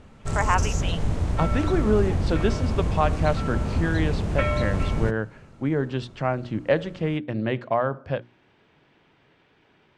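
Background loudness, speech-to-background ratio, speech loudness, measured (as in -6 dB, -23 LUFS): -26.5 LUFS, -0.5 dB, -27.0 LUFS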